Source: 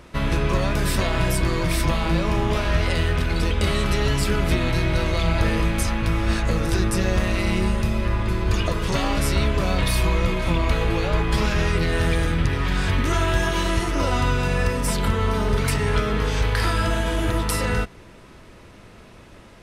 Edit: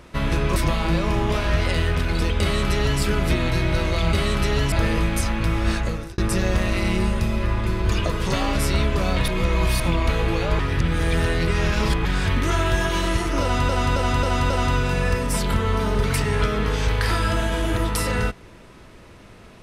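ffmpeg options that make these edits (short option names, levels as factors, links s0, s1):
-filter_complex "[0:a]asplit=13[s0][s1][s2][s3][s4][s5][s6][s7][s8][s9][s10][s11][s12];[s0]atrim=end=0.562[s13];[s1]atrim=start=1.768:end=5.342[s14];[s2]atrim=start=3.618:end=4.212[s15];[s3]atrim=start=5.338:end=6.8,asetpts=PTS-STARTPTS,afade=t=out:st=1.032:d=0.43[s16];[s4]atrim=start=6.8:end=9.902,asetpts=PTS-STARTPTS,afade=t=in:d=0.004:c=hsin[s17];[s5]atrim=start=9.898:end=10.422,asetpts=PTS-STARTPTS,areverse[s18];[s6]atrim=start=10.418:end=11.212[s19];[s7]atrim=start=11.208:end=12.672,asetpts=PTS-STARTPTS,areverse[s20];[s8]atrim=start=12.668:end=14.312[s21];[s9]atrim=start=14.038:end=14.312[s22];[s10]atrim=start=14.038:end=14.312[s23];[s11]atrim=start=14.038:end=14.312[s24];[s12]atrim=start=14.038[s25];[s13][s14]acrossfade=d=0.004:c1=hsin:c2=hsin[s26];[s26][s15]acrossfade=d=0.004:c1=hsin:c2=hsin[s27];[s16][s17]concat=n=2:v=0:a=1[s28];[s27][s28]acrossfade=d=0.004:c1=hsin:c2=hsin[s29];[s29][s18]acrossfade=d=0.004:c1=hsin:c2=hsin[s30];[s30][s19]acrossfade=d=0.004:c1=hsin:c2=hsin[s31];[s31][s20]acrossfade=d=0.004:c1=hsin:c2=hsin[s32];[s32][s21]acrossfade=d=0.004:c1=hsin:c2=hsin[s33];[s33][s22]acrossfade=d=0.004:c1=hsin:c2=hsin[s34];[s34][s23]acrossfade=d=0.004:c1=hsin:c2=hsin[s35];[s35][s24]acrossfade=d=0.004:c1=hsin:c2=hsin[s36];[s36][s25]acrossfade=d=0.004:c1=hsin:c2=hsin"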